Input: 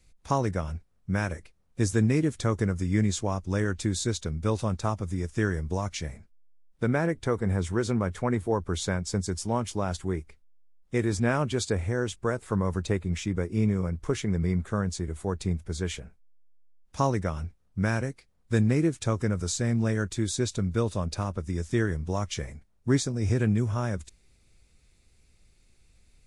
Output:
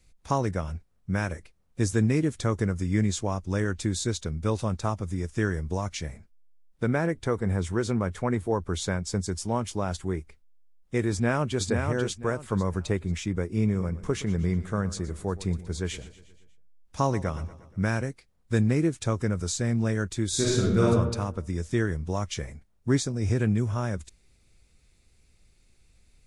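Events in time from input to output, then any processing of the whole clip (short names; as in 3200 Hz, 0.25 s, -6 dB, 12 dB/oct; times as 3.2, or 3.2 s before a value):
11.11–11.65 echo throw 0.49 s, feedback 25%, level -5 dB
13.63–17.82 feedback echo 0.119 s, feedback 58%, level -17 dB
20.28–20.87 reverb throw, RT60 1 s, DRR -6 dB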